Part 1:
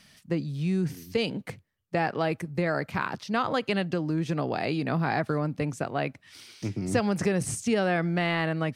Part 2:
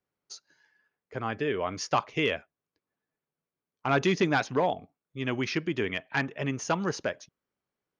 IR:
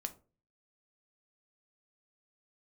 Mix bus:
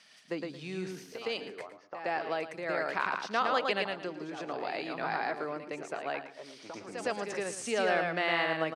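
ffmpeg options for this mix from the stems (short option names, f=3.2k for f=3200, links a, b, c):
-filter_complex "[0:a]volume=-1.5dB,asplit=2[a][b];[b]volume=-3.5dB[c];[1:a]lowpass=1.1k,acompressor=threshold=-36dB:ratio=10,volume=-3.5dB,asplit=3[d][e][f];[e]volume=-10.5dB[g];[f]apad=whole_len=385899[h];[a][h]sidechaincompress=threshold=-51dB:ratio=6:attack=6.4:release=650[i];[c][g]amix=inputs=2:normalize=0,aecho=0:1:112|224|336|448:1|0.23|0.0529|0.0122[j];[i][d][j]amix=inputs=3:normalize=0,highpass=440,lowpass=7.4k"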